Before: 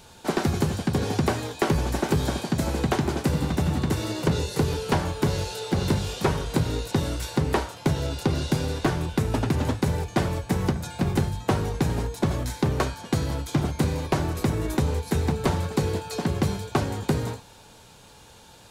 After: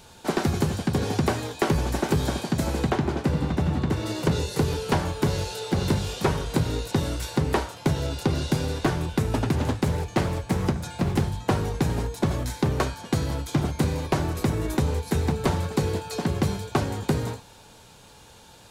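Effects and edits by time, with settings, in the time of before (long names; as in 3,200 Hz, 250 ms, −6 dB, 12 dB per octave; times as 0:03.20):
0:02.90–0:04.06: low-pass filter 2,900 Hz 6 dB per octave
0:09.54–0:11.52: highs frequency-modulated by the lows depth 0.29 ms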